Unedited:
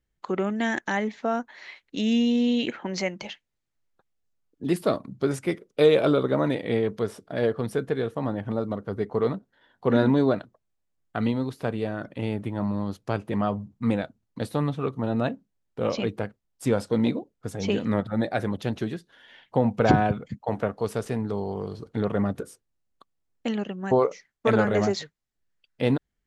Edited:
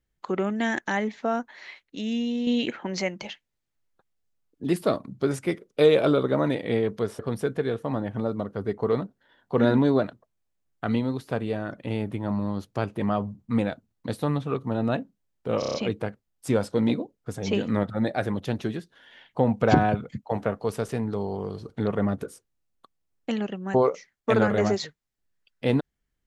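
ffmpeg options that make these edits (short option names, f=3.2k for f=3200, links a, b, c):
-filter_complex "[0:a]asplit=9[a][b][c][d][e][f][g][h][i];[a]atrim=end=1.832[j];[b]atrim=start=1.828:end=2.472,asetpts=PTS-STARTPTS,volume=-5.5dB[k];[c]atrim=start=2.468:end=7.192[l];[d]atrim=start=7.508:end=15.942[m];[e]atrim=start=15.908:end=15.942[n];[f]atrim=start=15.908:end=15.942[o];[g]atrim=start=15.908:end=15.942[p];[h]atrim=start=15.908:end=15.942[q];[i]atrim=start=15.908[r];[j][k]acrossfade=d=0.004:c1=hsin:c2=hsin[s];[s][l]acrossfade=d=0.004:c1=hsin:c2=hsin[t];[t][m]acrossfade=d=0.004:c1=hsin:c2=hsin[u];[u][n]acrossfade=d=0.004:c1=hsin:c2=hsin[v];[v][o]acrossfade=d=0.004:c1=hsin:c2=hsin[w];[w][p]acrossfade=d=0.004:c1=hsin:c2=hsin[x];[x][q]acrossfade=d=0.004:c1=hsin:c2=hsin[y];[y][r]acrossfade=d=0.004:c1=hsin:c2=hsin"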